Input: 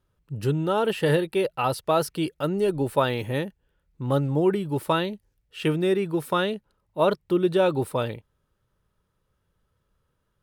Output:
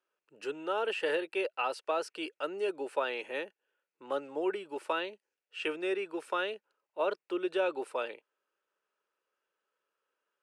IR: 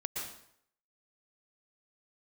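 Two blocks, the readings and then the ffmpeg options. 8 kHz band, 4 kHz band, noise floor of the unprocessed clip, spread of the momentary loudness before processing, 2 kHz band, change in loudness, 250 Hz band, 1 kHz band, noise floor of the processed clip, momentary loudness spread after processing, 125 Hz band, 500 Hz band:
under -10 dB, -7.5 dB, -74 dBFS, 10 LU, -4.0 dB, -9.5 dB, -14.0 dB, -8.5 dB, under -85 dBFS, 9 LU, under -35 dB, -9.0 dB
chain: -filter_complex "[0:a]acrossover=split=480[a][b];[b]acompressor=threshold=-22dB:ratio=6[c];[a][c]amix=inputs=2:normalize=0,highpass=f=370:w=0.5412,highpass=f=370:w=1.3066,equalizer=f=1.5k:t=q:w=4:g=5,equalizer=f=2.6k:t=q:w=4:g=8,equalizer=f=3.7k:t=q:w=4:g=-4,lowpass=f=8.5k:w=0.5412,lowpass=f=8.5k:w=1.3066,volume=-7.5dB"

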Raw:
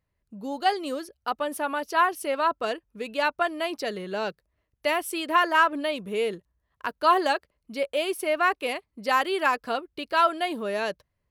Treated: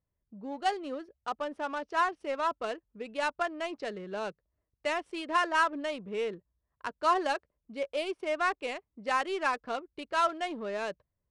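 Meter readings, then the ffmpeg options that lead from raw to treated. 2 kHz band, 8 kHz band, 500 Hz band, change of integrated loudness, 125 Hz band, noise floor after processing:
-6.5 dB, -8.0 dB, -6.0 dB, -6.0 dB, n/a, -85 dBFS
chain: -af "adynamicsmooth=sensitivity=4.5:basefreq=1.5k,aresample=22050,aresample=44100,volume=-6dB"

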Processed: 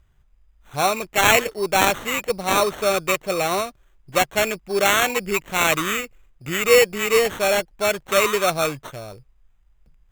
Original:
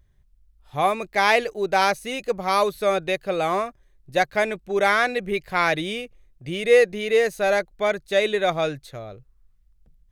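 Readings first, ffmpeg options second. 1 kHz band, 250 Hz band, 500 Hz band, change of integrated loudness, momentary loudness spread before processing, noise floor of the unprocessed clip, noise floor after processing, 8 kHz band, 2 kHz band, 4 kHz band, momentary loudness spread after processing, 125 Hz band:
+1.0 dB, +1.5 dB, +0.5 dB, +2.5 dB, 14 LU, -59 dBFS, -58 dBFS, +14.0 dB, +2.5 dB, +5.5 dB, 10 LU, +2.5 dB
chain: -af "highshelf=f=2.2k:t=q:w=1.5:g=7,acrusher=samples=9:mix=1:aa=0.000001,volume=1dB"

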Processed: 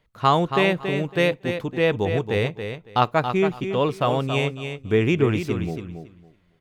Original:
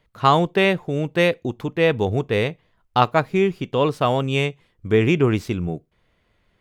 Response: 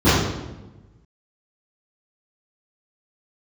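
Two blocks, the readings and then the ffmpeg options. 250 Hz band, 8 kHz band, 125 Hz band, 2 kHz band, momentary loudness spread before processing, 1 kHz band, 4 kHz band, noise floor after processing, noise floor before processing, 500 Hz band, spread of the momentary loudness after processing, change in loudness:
-2.0 dB, n/a, -2.0 dB, -2.0 dB, 9 LU, -2.0 dB, -2.0 dB, -61 dBFS, -66 dBFS, -2.0 dB, 7 LU, -2.0 dB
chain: -af "aecho=1:1:278|556|834:0.398|0.0756|0.0144,volume=-2.5dB"

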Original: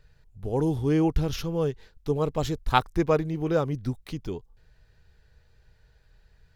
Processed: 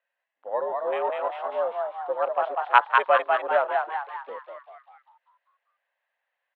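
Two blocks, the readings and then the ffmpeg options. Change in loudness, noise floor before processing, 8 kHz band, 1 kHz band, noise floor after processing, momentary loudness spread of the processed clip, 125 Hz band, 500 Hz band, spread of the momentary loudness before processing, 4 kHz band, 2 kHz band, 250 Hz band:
+2.5 dB, -62 dBFS, under -25 dB, +8.5 dB, -83 dBFS, 15 LU, under -40 dB, +2.0 dB, 12 LU, -2.0 dB, +11.0 dB, under -20 dB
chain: -filter_complex "[0:a]highpass=f=500:t=q:w=0.5412,highpass=f=500:t=q:w=1.307,lowpass=f=3.1k:t=q:w=0.5176,lowpass=f=3.1k:t=q:w=0.7071,lowpass=f=3.1k:t=q:w=1.932,afreqshift=88,afwtdn=0.0112,asplit=8[a][b][c][d][e][f][g][h];[b]adelay=197,afreqshift=98,volume=-3dB[i];[c]adelay=394,afreqshift=196,volume=-8.7dB[j];[d]adelay=591,afreqshift=294,volume=-14.4dB[k];[e]adelay=788,afreqshift=392,volume=-20dB[l];[f]adelay=985,afreqshift=490,volume=-25.7dB[m];[g]adelay=1182,afreqshift=588,volume=-31.4dB[n];[h]adelay=1379,afreqshift=686,volume=-37.1dB[o];[a][i][j][k][l][m][n][o]amix=inputs=8:normalize=0,volume=5dB"

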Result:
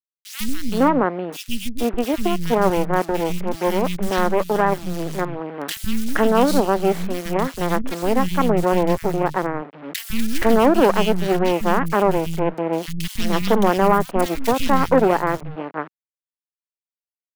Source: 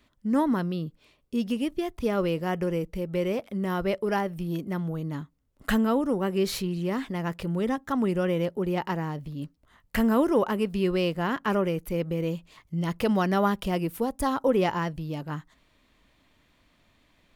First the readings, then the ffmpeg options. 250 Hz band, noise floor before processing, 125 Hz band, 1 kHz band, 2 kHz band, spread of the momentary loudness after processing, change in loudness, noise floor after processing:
+5.0 dB, -66 dBFS, +3.5 dB, +10.5 dB, +8.0 dB, 12 LU, +7.0 dB, under -85 dBFS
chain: -filter_complex "[0:a]acrossover=split=150|1100[a][b][c];[a]acompressor=threshold=-47dB:ratio=6[d];[d][b][c]amix=inputs=3:normalize=0,acrusher=bits=4:dc=4:mix=0:aa=0.000001,aeval=exprs='0.299*(cos(1*acos(clip(val(0)/0.299,-1,1)))-cos(1*PI/2))+0.0841*(cos(2*acos(clip(val(0)/0.299,-1,1)))-cos(2*PI/2))+0.075*(cos(6*acos(clip(val(0)/0.299,-1,1)))-cos(6*PI/2))':c=same,acrossover=split=200|2300[e][f][g];[e]adelay=150[h];[f]adelay=470[i];[h][i][g]amix=inputs=3:normalize=0,adynamicequalizer=threshold=0.0141:dfrequency=1500:dqfactor=0.7:tfrequency=1500:tqfactor=0.7:attack=5:release=100:ratio=0.375:range=2:mode=cutabove:tftype=highshelf,volume=6dB"

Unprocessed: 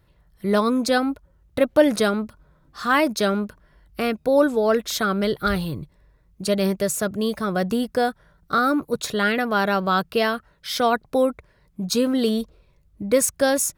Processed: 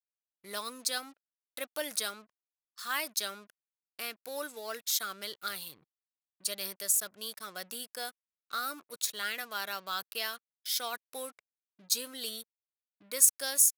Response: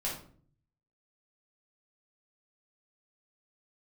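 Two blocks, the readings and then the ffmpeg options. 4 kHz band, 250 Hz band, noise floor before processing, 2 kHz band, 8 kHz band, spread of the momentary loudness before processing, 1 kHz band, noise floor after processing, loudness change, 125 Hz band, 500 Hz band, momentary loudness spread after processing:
-5.5 dB, -29.5 dB, -60 dBFS, -13.0 dB, 0.0 dB, 12 LU, -16.5 dB, under -85 dBFS, -11.0 dB, under -30 dB, -22.5 dB, 14 LU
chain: -af "aeval=exprs='sgn(val(0))*max(abs(val(0))-0.00596,0)':c=same,anlmdn=0.158,aderivative"

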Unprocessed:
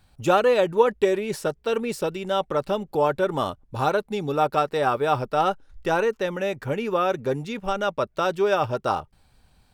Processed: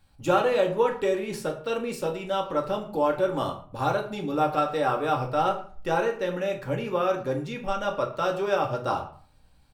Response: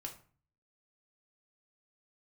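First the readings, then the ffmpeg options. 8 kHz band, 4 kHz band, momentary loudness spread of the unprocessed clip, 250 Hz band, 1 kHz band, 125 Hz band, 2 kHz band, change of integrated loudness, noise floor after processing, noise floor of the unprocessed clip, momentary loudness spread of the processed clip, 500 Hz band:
n/a, -3.5 dB, 8 LU, -2.0 dB, -2.5 dB, -2.0 dB, -3.5 dB, -3.0 dB, -57 dBFS, -61 dBFS, 7 LU, -3.0 dB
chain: -filter_complex "[0:a]asplit=2[a][b];[b]adelay=110,highpass=300,lowpass=3.4k,asoftclip=type=hard:threshold=-14.5dB,volume=-18dB[c];[a][c]amix=inputs=2:normalize=0[d];[1:a]atrim=start_sample=2205[e];[d][e]afir=irnorm=-1:irlink=0"

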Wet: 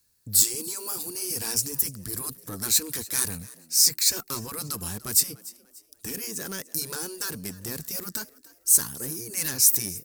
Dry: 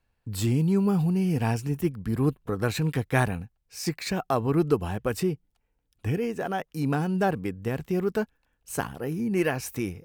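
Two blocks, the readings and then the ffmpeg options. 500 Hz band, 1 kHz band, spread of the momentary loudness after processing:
-13.0 dB, -11.0 dB, 15 LU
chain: -filter_complex "[0:a]highpass=f=110:p=1,afftfilt=real='re*lt(hypot(re,im),0.251)':imag='im*lt(hypot(re,im),0.251)':win_size=1024:overlap=0.75,equalizer=f=720:w=1.9:g=-11,asplit=2[a][b];[b]acrusher=bits=3:mix=0:aa=0.000001,volume=-9.5dB[c];[a][c]amix=inputs=2:normalize=0,asoftclip=type=tanh:threshold=-30dB,aexciter=amount=12.7:drive=2:freq=4.2k,asplit=2[d][e];[e]asplit=3[f][g][h];[f]adelay=293,afreqshift=72,volume=-20.5dB[i];[g]adelay=586,afreqshift=144,volume=-29.1dB[j];[h]adelay=879,afreqshift=216,volume=-37.8dB[k];[i][j][k]amix=inputs=3:normalize=0[l];[d][l]amix=inputs=2:normalize=0"

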